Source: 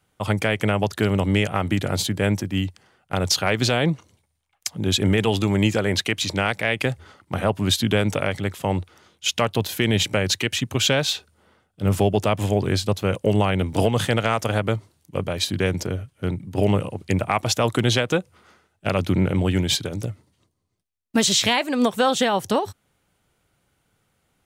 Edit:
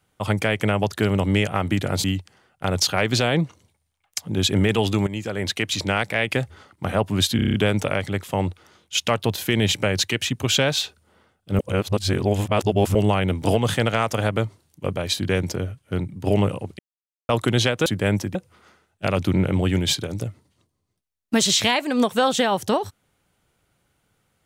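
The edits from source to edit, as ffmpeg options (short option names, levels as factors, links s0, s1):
-filter_complex "[0:a]asplit=15[s0][s1][s2][s3][s4][s5][s6][s7][s8][s9][s10][s11][s12][s13][s14];[s0]atrim=end=2.042[s15];[s1]atrim=start=2.528:end=5.56,asetpts=PTS-STARTPTS,afade=t=out:st=3.028:d=0.004:c=hsin:silence=0.188365[s16];[s2]atrim=start=5.56:end=7.882,asetpts=PTS-STARTPTS,afade=t=in:d=0.64:silence=0.188365[s17];[s3]atrim=start=7.848:end=7.882[s18];[s4]atrim=start=7.848:end=7.882[s19];[s5]atrim=start=7.848:end=7.882[s20];[s6]atrim=start=7.848:end=7.882[s21];[s7]atrim=start=7.848:end=7.882[s22];[s8]atrim=start=7.848:end=11.902[s23];[s9]atrim=start=11.898:end=13.262,asetpts=PTS-STARTPTS,areverse[s24];[s10]atrim=start=13.258:end=17.1,asetpts=PTS-STARTPTS,afade=t=out:st=3.838:d=0.004:c=hsin[s25];[s11]atrim=start=17.1:end=17.6,asetpts=PTS-STARTPTS,volume=0[s26];[s12]atrim=start=17.6:end=18.172,asetpts=PTS-STARTPTS,afade=t=in:d=0.004:c=hsin[s27];[s13]atrim=start=2.038:end=2.532[s28];[s14]atrim=start=18.168[s29];[s16][s17]concat=n=2:v=0:a=1[s30];[s15][s30]acrossfade=d=0.004:c1=hsin:c2=hsin[s31];[s31][s18]acrossfade=d=0.004:c1=hsin:c2=hsin[s32];[s32][s19]acrossfade=d=0.004:c1=hsin:c2=hsin[s33];[s33][s20]acrossfade=d=0.004:c1=hsin:c2=hsin[s34];[s34][s21]acrossfade=d=0.004:c1=hsin:c2=hsin[s35];[s35][s22]acrossfade=d=0.004:c1=hsin:c2=hsin[s36];[s36][s23]acrossfade=d=0.004:c1=hsin:c2=hsin[s37];[s37][s24]acrossfade=d=0.004:c1=hsin:c2=hsin[s38];[s25][s26][s27]concat=n=3:v=0:a=1[s39];[s38][s39]acrossfade=d=0.004:c1=hsin:c2=hsin[s40];[s40][s28]acrossfade=d=0.004:c1=hsin:c2=hsin[s41];[s41][s29]acrossfade=d=0.004:c1=hsin:c2=hsin"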